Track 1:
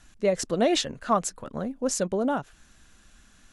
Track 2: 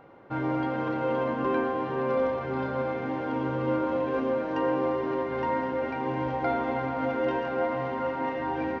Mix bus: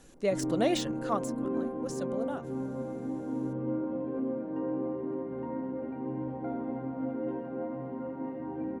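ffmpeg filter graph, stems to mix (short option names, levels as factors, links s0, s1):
-filter_complex "[0:a]deesser=0.65,crystalizer=i=1:c=0,volume=0.562,afade=t=out:st=0.77:d=0.68:silence=0.446684[s0];[1:a]bandpass=f=220:t=q:w=1.4:csg=0,volume=1[s1];[s0][s1]amix=inputs=2:normalize=0"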